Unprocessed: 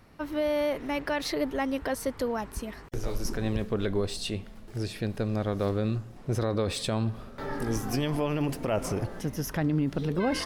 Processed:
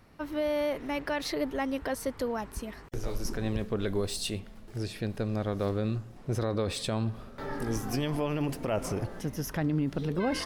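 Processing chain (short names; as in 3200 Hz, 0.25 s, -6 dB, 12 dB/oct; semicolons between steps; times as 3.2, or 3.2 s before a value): 3.86–4.4 high shelf 7900 Hz +11.5 dB; gain -2 dB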